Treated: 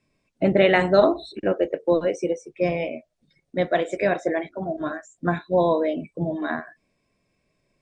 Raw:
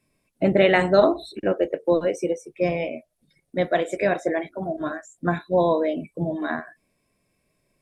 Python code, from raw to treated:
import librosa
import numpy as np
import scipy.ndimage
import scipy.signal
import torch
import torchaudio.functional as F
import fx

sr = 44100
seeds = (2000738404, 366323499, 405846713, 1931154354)

y = scipy.signal.sosfilt(scipy.signal.butter(4, 7400.0, 'lowpass', fs=sr, output='sos'), x)